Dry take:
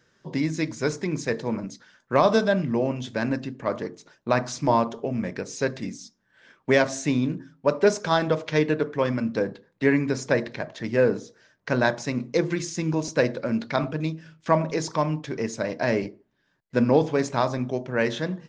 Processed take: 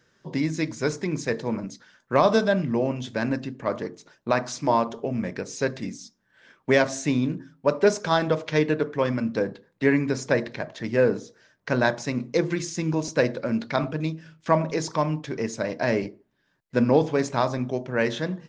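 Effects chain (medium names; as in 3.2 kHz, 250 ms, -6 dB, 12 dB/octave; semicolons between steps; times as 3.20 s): 4.31–4.90 s: bass shelf 120 Hz -10.5 dB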